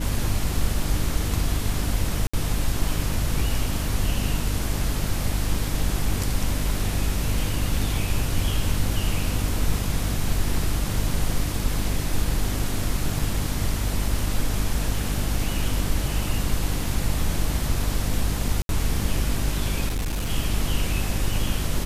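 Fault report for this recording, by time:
hum 50 Hz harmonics 6 -28 dBFS
2.27–2.33 s: dropout 65 ms
13.19 s: dropout 3.1 ms
18.62–18.69 s: dropout 72 ms
19.89–20.30 s: clipped -22.5 dBFS

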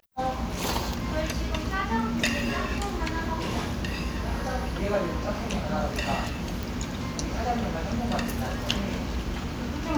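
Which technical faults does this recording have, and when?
6.63 s: pop

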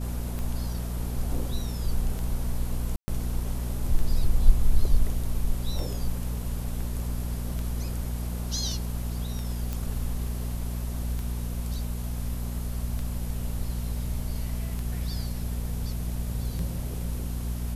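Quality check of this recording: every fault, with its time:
hum 60 Hz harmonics 4 -31 dBFS
tick 33 1/3 rpm
2.96–3.08 s: dropout 120 ms
9.73 s: pop

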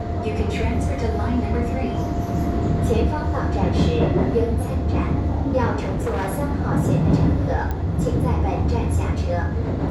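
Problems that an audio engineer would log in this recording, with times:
5.81–6.30 s: clipped -20 dBFS
7.71 s: pop -14 dBFS

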